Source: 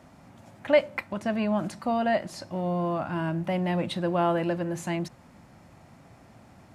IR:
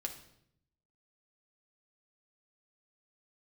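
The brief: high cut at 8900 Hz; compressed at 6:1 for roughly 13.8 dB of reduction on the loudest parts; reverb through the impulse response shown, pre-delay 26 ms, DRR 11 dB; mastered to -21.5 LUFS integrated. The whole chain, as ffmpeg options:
-filter_complex "[0:a]lowpass=8.9k,acompressor=threshold=-30dB:ratio=6,asplit=2[a][b];[1:a]atrim=start_sample=2205,adelay=26[c];[b][c]afir=irnorm=-1:irlink=0,volume=-10.5dB[d];[a][d]amix=inputs=2:normalize=0,volume=13dB"

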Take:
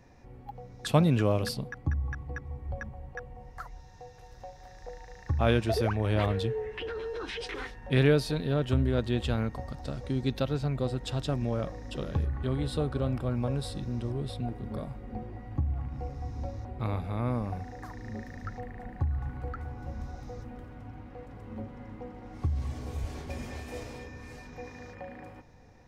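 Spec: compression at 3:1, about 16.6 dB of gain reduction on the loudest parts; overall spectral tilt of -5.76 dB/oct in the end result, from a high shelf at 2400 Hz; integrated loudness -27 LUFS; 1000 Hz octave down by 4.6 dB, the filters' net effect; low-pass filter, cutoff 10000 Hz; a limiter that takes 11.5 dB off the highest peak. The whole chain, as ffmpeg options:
-af "lowpass=10k,equalizer=f=1k:t=o:g=-7.5,highshelf=f=2.4k:g=3,acompressor=threshold=-42dB:ratio=3,volume=20.5dB,alimiter=limit=-17.5dB:level=0:latency=1"

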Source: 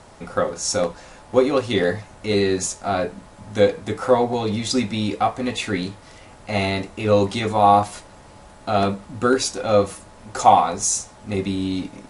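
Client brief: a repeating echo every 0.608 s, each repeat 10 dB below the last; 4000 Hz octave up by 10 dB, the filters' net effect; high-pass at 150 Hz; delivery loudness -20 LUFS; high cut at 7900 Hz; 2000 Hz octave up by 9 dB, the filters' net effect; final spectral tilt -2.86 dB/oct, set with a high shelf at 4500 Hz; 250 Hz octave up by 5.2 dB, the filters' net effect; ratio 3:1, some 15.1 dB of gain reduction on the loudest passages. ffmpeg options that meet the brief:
-af "highpass=150,lowpass=7.9k,equalizer=f=250:t=o:g=7,equalizer=f=2k:t=o:g=8,equalizer=f=4k:t=o:g=6.5,highshelf=f=4.5k:g=7,acompressor=threshold=-27dB:ratio=3,aecho=1:1:608|1216|1824|2432:0.316|0.101|0.0324|0.0104,volume=7.5dB"

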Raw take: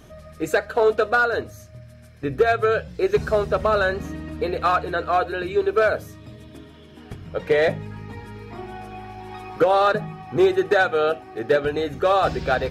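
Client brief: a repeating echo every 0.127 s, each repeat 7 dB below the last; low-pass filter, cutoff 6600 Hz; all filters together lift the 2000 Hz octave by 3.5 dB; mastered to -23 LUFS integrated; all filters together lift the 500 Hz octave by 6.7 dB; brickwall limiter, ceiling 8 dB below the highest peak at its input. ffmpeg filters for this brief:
-af "lowpass=6.6k,equalizer=f=500:t=o:g=8,equalizer=f=2k:t=o:g=4.5,alimiter=limit=-9dB:level=0:latency=1,aecho=1:1:127|254|381|508|635:0.447|0.201|0.0905|0.0407|0.0183,volume=-4.5dB"

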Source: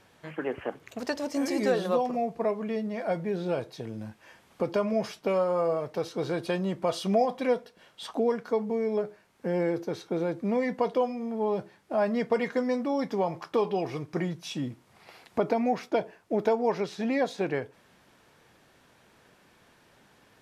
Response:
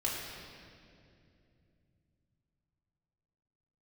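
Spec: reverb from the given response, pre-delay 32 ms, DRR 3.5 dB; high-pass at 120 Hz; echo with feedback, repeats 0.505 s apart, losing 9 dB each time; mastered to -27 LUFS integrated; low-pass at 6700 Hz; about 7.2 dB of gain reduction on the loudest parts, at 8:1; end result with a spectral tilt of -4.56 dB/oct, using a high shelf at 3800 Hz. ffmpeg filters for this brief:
-filter_complex "[0:a]highpass=120,lowpass=6.7k,highshelf=f=3.8k:g=7.5,acompressor=threshold=-27dB:ratio=8,aecho=1:1:505|1010|1515|2020:0.355|0.124|0.0435|0.0152,asplit=2[a][b];[1:a]atrim=start_sample=2205,adelay=32[c];[b][c]afir=irnorm=-1:irlink=0,volume=-9dB[d];[a][d]amix=inputs=2:normalize=0,volume=4.5dB"

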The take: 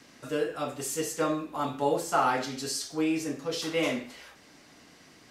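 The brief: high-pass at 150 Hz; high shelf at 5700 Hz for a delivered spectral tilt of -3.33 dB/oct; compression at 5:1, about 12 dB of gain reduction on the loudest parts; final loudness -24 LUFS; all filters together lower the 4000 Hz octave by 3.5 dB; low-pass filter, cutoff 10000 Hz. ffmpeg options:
-af "highpass=150,lowpass=10k,equalizer=f=4k:t=o:g=-3.5,highshelf=f=5.7k:g=-3,acompressor=threshold=-35dB:ratio=5,volume=15dB"

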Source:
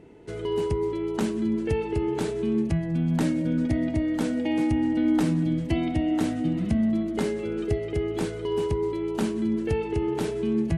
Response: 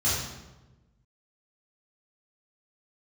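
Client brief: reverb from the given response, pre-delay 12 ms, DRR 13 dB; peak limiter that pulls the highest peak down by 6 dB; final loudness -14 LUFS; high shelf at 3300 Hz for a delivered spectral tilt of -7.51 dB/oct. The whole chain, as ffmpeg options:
-filter_complex "[0:a]highshelf=f=3.3k:g=-7,alimiter=limit=-19dB:level=0:latency=1,asplit=2[a][b];[1:a]atrim=start_sample=2205,adelay=12[c];[b][c]afir=irnorm=-1:irlink=0,volume=-24.5dB[d];[a][d]amix=inputs=2:normalize=0,volume=13.5dB"

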